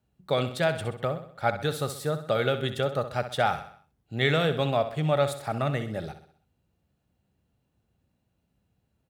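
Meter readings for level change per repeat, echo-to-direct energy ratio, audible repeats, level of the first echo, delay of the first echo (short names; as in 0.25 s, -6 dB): -6.5 dB, -10.0 dB, 4, -11.0 dB, 64 ms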